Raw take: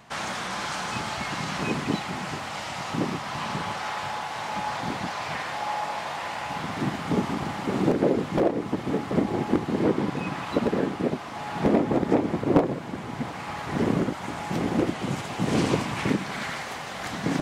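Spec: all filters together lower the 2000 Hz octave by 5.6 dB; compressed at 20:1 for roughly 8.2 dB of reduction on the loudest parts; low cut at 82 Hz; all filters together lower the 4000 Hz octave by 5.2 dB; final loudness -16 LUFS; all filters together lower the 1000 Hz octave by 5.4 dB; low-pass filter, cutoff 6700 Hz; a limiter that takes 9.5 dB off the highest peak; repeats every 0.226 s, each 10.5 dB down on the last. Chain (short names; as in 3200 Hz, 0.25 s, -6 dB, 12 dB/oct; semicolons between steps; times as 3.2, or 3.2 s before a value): HPF 82 Hz; LPF 6700 Hz; bell 1000 Hz -6 dB; bell 2000 Hz -4 dB; bell 4000 Hz -4.5 dB; compressor 20:1, threshold -25 dBFS; limiter -25 dBFS; feedback echo 0.226 s, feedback 30%, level -10.5 dB; gain +19 dB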